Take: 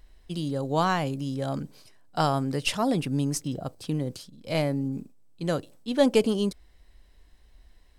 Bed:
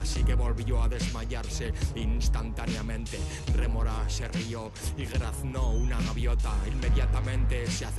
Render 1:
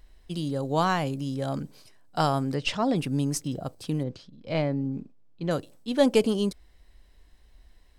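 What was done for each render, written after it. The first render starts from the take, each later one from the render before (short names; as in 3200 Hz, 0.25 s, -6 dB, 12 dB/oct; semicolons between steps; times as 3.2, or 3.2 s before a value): 2.54–2.96 running mean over 4 samples; 4.03–5.51 air absorption 170 m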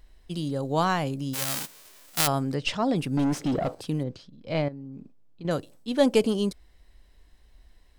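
1.33–2.26 spectral whitening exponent 0.1; 3.17–3.81 overdrive pedal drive 28 dB, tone 1100 Hz, clips at -16.5 dBFS; 4.68–5.45 compressor 5:1, threshold -38 dBFS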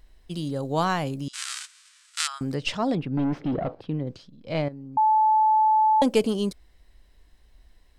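1.28–2.41 elliptic band-pass 1300–8700 Hz, stop band 50 dB; 2.95–4.07 air absorption 350 m; 4.97–6.02 bleep 868 Hz -16 dBFS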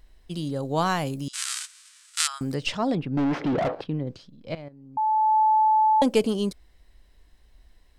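0.85–2.67 high shelf 7500 Hz +9 dB; 3.17–3.84 overdrive pedal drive 23 dB, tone 2400 Hz, clips at -18 dBFS; 4.55–5.39 fade in, from -18.5 dB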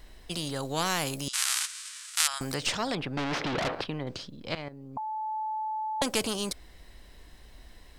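spectral compressor 2:1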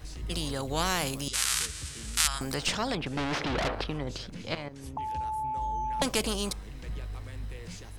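add bed -12.5 dB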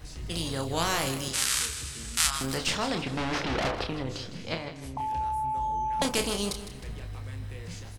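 doubler 30 ms -6.5 dB; feedback echo 0.157 s, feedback 42%, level -12 dB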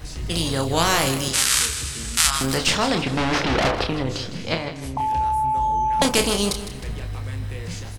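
gain +8.5 dB; limiter -3 dBFS, peak gain reduction 3 dB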